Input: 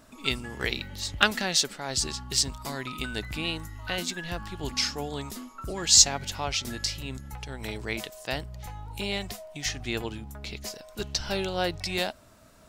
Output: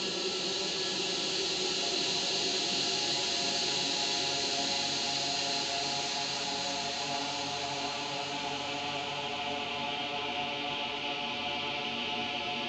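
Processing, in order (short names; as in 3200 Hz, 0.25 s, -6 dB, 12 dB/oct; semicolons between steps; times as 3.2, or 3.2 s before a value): air absorption 240 m; Paulstretch 15×, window 1.00 s, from 5.75; speaker cabinet 270–8100 Hz, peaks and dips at 600 Hz -6 dB, 1100 Hz -9 dB, 1600 Hz -6 dB, 2900 Hz +6 dB, 5400 Hz -9 dB; gain +2 dB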